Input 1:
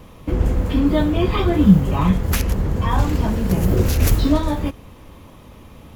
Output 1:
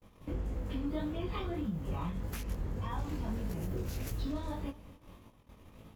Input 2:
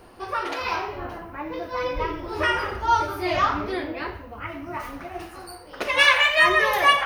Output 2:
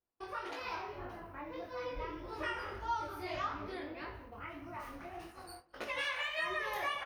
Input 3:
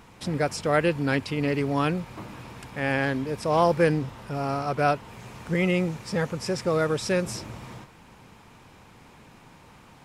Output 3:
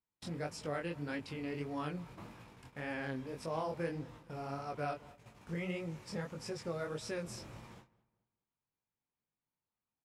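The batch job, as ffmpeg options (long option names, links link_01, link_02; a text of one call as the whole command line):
ffmpeg -i in.wav -filter_complex "[0:a]agate=range=-38dB:threshold=-40dB:ratio=16:detection=peak,alimiter=limit=-10.5dB:level=0:latency=1:release=119,acompressor=threshold=-41dB:ratio=1.5,flanger=delay=18:depth=6.1:speed=1.7,asplit=2[link_01][link_02];[link_02]adelay=213,lowpass=frequency=2100:poles=1,volume=-21dB,asplit=2[link_03][link_04];[link_04]adelay=213,lowpass=frequency=2100:poles=1,volume=0.36,asplit=2[link_05][link_06];[link_06]adelay=213,lowpass=frequency=2100:poles=1,volume=0.36[link_07];[link_03][link_05][link_07]amix=inputs=3:normalize=0[link_08];[link_01][link_08]amix=inputs=2:normalize=0,volume=-5dB" out.wav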